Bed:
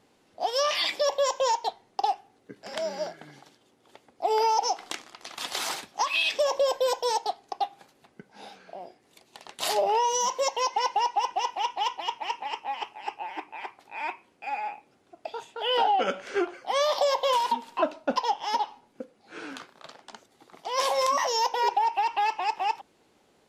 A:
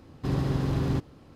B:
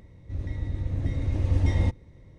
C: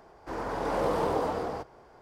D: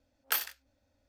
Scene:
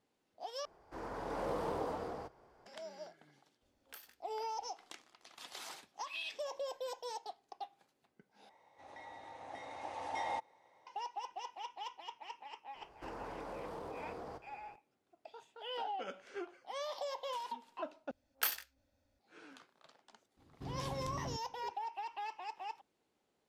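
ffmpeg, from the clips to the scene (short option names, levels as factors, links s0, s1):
-filter_complex "[3:a]asplit=2[s0][s1];[4:a]asplit=2[s2][s3];[0:a]volume=0.141[s4];[s2]acompressor=threshold=0.00631:ratio=6:attack=3:release=286:knee=1:detection=rms[s5];[2:a]highpass=f=810:t=q:w=6.6[s6];[s1]acompressor=threshold=0.0178:ratio=6:attack=3.2:release=140:knee=1:detection=peak[s7];[s4]asplit=4[s8][s9][s10][s11];[s8]atrim=end=0.654[s12];[s0]atrim=end=2.01,asetpts=PTS-STARTPTS,volume=0.316[s13];[s9]atrim=start=2.656:end=8.494[s14];[s6]atrim=end=2.38,asetpts=PTS-STARTPTS,volume=0.531[s15];[s10]atrim=start=10.866:end=18.114[s16];[s3]atrim=end=1.08,asetpts=PTS-STARTPTS,volume=0.631[s17];[s11]atrim=start=19.186[s18];[s5]atrim=end=1.08,asetpts=PTS-STARTPTS,volume=0.631,afade=t=in:d=0.004:c=hsin,afade=t=out:st=1.076:d=0.004:c=hsin,adelay=3620[s19];[s7]atrim=end=2.01,asetpts=PTS-STARTPTS,volume=0.447,afade=t=in:d=0.004:c=hsin,afade=t=out:st=2.006:d=0.004:c=hsin,adelay=12750[s20];[1:a]atrim=end=1.35,asetpts=PTS-STARTPTS,volume=0.141,afade=t=in:d=0.004:c=hsin,afade=t=out:st=1.346:d=0.004:c=hsin,adelay=20370[s21];[s12][s13]acrossfade=d=0.004:c1=hsin:c2=hsin[s22];[s22][s14]acrossfade=d=0.004:c1=hsin:c2=hsin[s23];[s23][s15]acrossfade=d=0.004:c1=hsin:c2=hsin[s24];[s24][s16]acrossfade=d=0.004:c1=hsin:c2=hsin[s25];[s25][s17]acrossfade=d=0.004:c1=hsin:c2=hsin[s26];[s26][s18]acrossfade=d=0.004:c1=hsin:c2=hsin[s27];[s27][s19][s20][s21]amix=inputs=4:normalize=0"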